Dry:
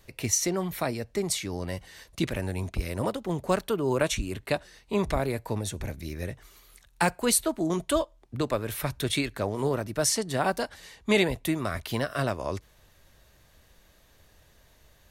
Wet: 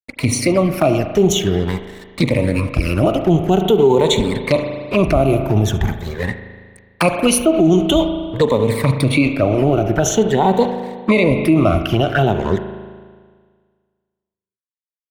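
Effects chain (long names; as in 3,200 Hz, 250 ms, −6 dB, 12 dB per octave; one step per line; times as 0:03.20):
rippled gain that drifts along the octave scale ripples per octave 0.98, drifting +0.46 Hz, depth 16 dB
high-pass filter 46 Hz 6 dB per octave
high-shelf EQ 3,100 Hz −2 dB
single-tap delay 70 ms −19 dB
dead-zone distortion −42.5 dBFS
flanger swept by the level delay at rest 4.6 ms, full sweep at −24.5 dBFS
bass and treble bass 0 dB, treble −8 dB, from 0:09.05 treble −14 dB
spring reverb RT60 1.7 s, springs 37 ms, chirp 40 ms, DRR 9.5 dB
boost into a limiter +20.5 dB
level −3.5 dB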